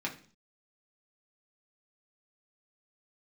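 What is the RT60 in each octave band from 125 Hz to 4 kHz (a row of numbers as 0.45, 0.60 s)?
0.55, 0.55, 0.45, 0.40, 0.40, 0.45 s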